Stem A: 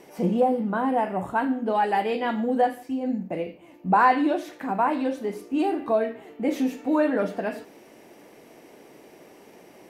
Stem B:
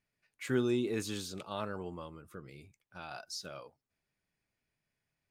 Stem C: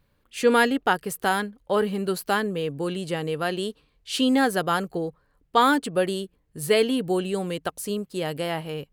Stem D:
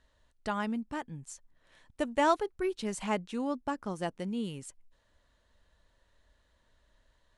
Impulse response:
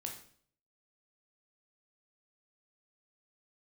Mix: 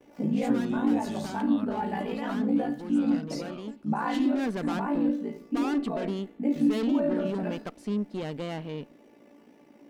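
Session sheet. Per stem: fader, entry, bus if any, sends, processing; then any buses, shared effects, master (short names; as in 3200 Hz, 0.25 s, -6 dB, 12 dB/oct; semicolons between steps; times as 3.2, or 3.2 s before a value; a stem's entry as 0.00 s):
+0.5 dB, 0.00 s, bus A, send -5 dB, median filter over 5 samples; ring modulator 28 Hz; resonator 290 Hz, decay 0.22 s, harmonics all, mix 80%
-0.5 dB, 0.00 s, bus B, no send, dry
-4.0 dB, 0.00 s, bus A, send -21 dB, LPF 4000 Hz 12 dB/oct; tube stage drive 28 dB, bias 0.65; auto duck -8 dB, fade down 0.60 s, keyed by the second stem
-6.5 dB, 0.00 s, bus B, no send, random-step tremolo 1.2 Hz, depth 80%; photocell phaser 0.99 Hz
bus A: 0.0 dB, bell 330 Hz +2 dB 1.8 oct; limiter -26 dBFS, peak gain reduction 9 dB
bus B: 0.0 dB, compressor 2:1, threshold -41 dBFS, peak gain reduction 9 dB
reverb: on, RT60 0.55 s, pre-delay 13 ms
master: gate with hold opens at -50 dBFS; bell 230 Hz +11.5 dB 0.53 oct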